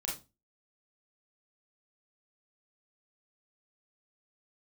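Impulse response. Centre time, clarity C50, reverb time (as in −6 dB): 32 ms, 6.5 dB, 0.30 s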